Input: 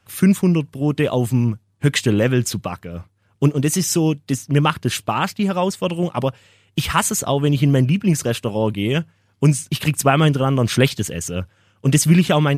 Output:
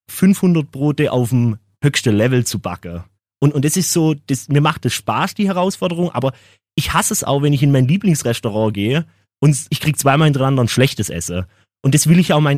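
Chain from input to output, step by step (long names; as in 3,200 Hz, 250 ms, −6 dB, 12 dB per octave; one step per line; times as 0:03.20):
in parallel at −3.5 dB: soft clipping −11 dBFS, distortion −15 dB
on the sum: noise gate −44 dBFS, range −41 dB
level −1 dB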